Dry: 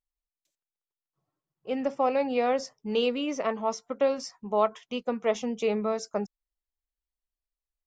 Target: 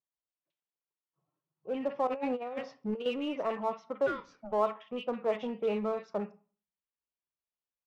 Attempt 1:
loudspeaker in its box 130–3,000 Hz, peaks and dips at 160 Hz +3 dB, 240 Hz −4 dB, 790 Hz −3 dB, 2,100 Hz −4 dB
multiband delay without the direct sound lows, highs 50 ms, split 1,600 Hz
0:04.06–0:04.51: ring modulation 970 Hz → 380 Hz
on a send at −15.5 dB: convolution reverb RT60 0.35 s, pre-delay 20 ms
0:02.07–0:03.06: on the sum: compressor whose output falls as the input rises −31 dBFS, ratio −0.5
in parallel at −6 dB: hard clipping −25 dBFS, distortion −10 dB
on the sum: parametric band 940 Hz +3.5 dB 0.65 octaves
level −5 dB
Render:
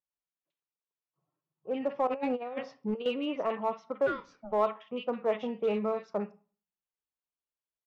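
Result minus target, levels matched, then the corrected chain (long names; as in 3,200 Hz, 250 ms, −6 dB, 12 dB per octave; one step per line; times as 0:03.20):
hard clipping: distortion −7 dB
loudspeaker in its box 130–3,000 Hz, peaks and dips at 160 Hz +3 dB, 240 Hz −4 dB, 790 Hz −3 dB, 2,100 Hz −4 dB
multiband delay without the direct sound lows, highs 50 ms, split 1,600 Hz
0:04.06–0:04.51: ring modulation 970 Hz → 380 Hz
on a send at −15.5 dB: convolution reverb RT60 0.35 s, pre-delay 20 ms
0:02.07–0:03.06: on the sum: compressor whose output falls as the input rises −31 dBFS, ratio −0.5
in parallel at −6 dB: hard clipping −34.5 dBFS, distortion −4 dB
on the sum: parametric band 940 Hz +3.5 dB 0.65 octaves
level −5 dB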